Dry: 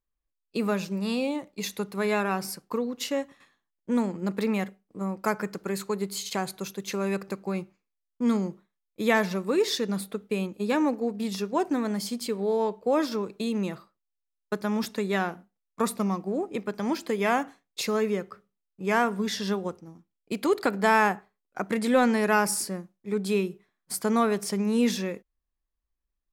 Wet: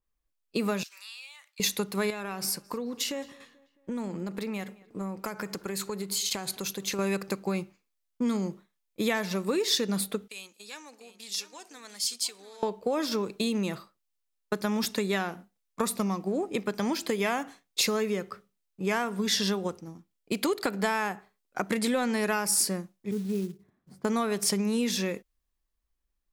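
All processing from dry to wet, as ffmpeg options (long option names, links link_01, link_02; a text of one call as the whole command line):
ffmpeg -i in.wav -filter_complex "[0:a]asettb=1/sr,asplit=3[link_01][link_02][link_03];[link_01]atrim=end=0.834[link_04];[link_02]atrim=start=0.83:end=1.6,asetpts=PTS-STARTPTS,afade=type=in:duration=0.004:curve=qsin,afade=type=out:start_time=0.766:duration=0.004:curve=qsin,highpass=frequency=1400:width=0.5412,highpass=frequency=1400:width=1.3066,acompressor=threshold=-53dB:ratio=2.5:attack=3.2:release=140:knee=1:detection=peak[link_05];[link_03]atrim=start=1.596[link_06];[link_04][link_05]acrossfade=duration=0.004:curve1=hsin:curve2=qsin[link_07];[link_07][link_06]acrossfade=duration=0.004:curve1=qsin:curve2=hsin,asettb=1/sr,asplit=3[link_08][link_09][link_10];[link_08]atrim=end=2.104[link_11];[link_09]atrim=start=2.1:end=6.99,asetpts=PTS-STARTPTS,afade=type=in:duration=0.004:curve=qsin,afade=type=out:start_time=4.886:duration=0.004:curve=qsin,acompressor=threshold=-33dB:ratio=10:attack=3.2:release=140:knee=1:detection=peak,asplit=2[link_12][link_13];[link_13]adelay=218,lowpass=frequency=4100:poles=1,volume=-22dB,asplit=2[link_14][link_15];[link_15]adelay=218,lowpass=frequency=4100:poles=1,volume=0.5,asplit=2[link_16][link_17];[link_17]adelay=218,lowpass=frequency=4100:poles=1,volume=0.5[link_18];[link_12][link_14][link_16][link_18]amix=inputs=4:normalize=0,atrim=end_sample=215649[link_19];[link_10]atrim=start=6.986[link_20];[link_11][link_19]acrossfade=duration=0.004:curve1=hsin:curve2=qsin[link_21];[link_21][link_20]acrossfade=duration=0.004:curve1=qsin:curve2=hsin,asettb=1/sr,asplit=3[link_22][link_23][link_24];[link_22]atrim=end=10.284[link_25];[link_23]atrim=start=10.28:end=12.63,asetpts=PTS-STARTPTS,afade=type=in:duration=0.004:curve=qsin,afade=type=out:start_time=2.346:duration=0.004:curve=qsin,acompressor=threshold=-26dB:ratio=12:attack=3.2:release=140:knee=1:detection=peak,bandpass=frequency=6600:width_type=q:width=0.78,aecho=1:1:694:0.237,atrim=end_sample=103635[link_26];[link_24]atrim=start=12.626[link_27];[link_25][link_26]acrossfade=duration=0.004:curve1=hsin:curve2=qsin[link_28];[link_28][link_27]acrossfade=duration=0.004:curve1=qsin:curve2=hsin,asettb=1/sr,asplit=3[link_29][link_30][link_31];[link_29]atrim=end=23.114[link_32];[link_30]atrim=start=23.11:end=24.05,asetpts=PTS-STARTPTS,afade=type=in:duration=0.004:curve=qsin,afade=type=out:start_time=0.936:duration=0.004:curve=qsin,acompressor=mode=upward:threshold=-40dB:ratio=2.5:attack=3.2:release=140:knee=2.83:detection=peak,bandpass=frequency=100:width_type=q:width=0.72,acrusher=bits=6:mode=log:mix=0:aa=0.000001[link_33];[link_31]atrim=start=24.046[link_34];[link_32][link_33]acrossfade=duration=0.004:curve1=hsin:curve2=qsin[link_35];[link_35][link_34]acrossfade=duration=0.004:curve1=qsin:curve2=hsin,acompressor=threshold=-28dB:ratio=6,adynamicequalizer=threshold=0.00355:dfrequency=2300:dqfactor=0.7:tfrequency=2300:tqfactor=0.7:attack=5:release=100:ratio=0.375:range=3:mode=boostabove:tftype=highshelf,volume=3dB" out.wav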